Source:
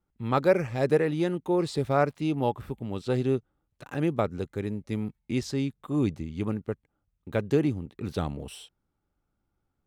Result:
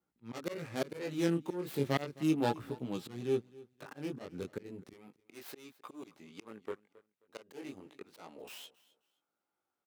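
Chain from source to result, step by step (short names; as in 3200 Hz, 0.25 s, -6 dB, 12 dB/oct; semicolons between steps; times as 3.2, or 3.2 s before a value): tracing distortion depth 0.48 ms; chorus 0.34 Hz, delay 16.5 ms, depth 6 ms; auto swell 0.337 s; HPF 170 Hz 12 dB/oct, from 4.94 s 460 Hz; dynamic EQ 790 Hz, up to -4 dB, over -49 dBFS, Q 1.1; feedback echo 0.263 s, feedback 25%, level -21 dB; record warp 33 1/3 rpm, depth 100 cents; gain +1 dB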